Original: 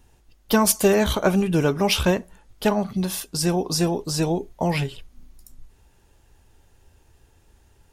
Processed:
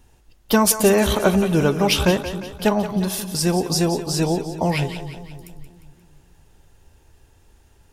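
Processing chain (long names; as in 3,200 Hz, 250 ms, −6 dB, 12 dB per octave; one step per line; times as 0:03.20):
echo with a time of its own for lows and highs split 330 Hz, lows 269 ms, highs 176 ms, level −11 dB
level +2 dB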